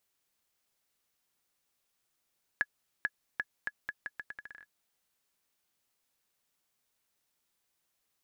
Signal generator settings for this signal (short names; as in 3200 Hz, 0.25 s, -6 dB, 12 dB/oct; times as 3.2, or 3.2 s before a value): bouncing ball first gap 0.44 s, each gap 0.79, 1690 Hz, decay 45 ms -16 dBFS